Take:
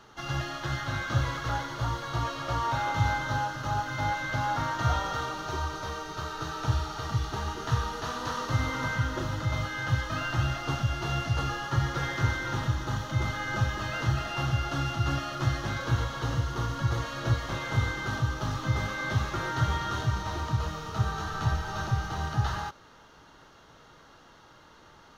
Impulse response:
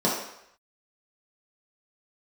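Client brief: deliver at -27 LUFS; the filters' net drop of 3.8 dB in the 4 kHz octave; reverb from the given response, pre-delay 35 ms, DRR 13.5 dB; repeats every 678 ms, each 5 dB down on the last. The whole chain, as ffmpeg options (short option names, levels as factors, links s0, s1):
-filter_complex "[0:a]equalizer=f=4000:t=o:g=-5,aecho=1:1:678|1356|2034|2712|3390|4068|4746:0.562|0.315|0.176|0.0988|0.0553|0.031|0.0173,asplit=2[s0][s1];[1:a]atrim=start_sample=2205,adelay=35[s2];[s1][s2]afir=irnorm=-1:irlink=0,volume=0.0398[s3];[s0][s3]amix=inputs=2:normalize=0,volume=1.26"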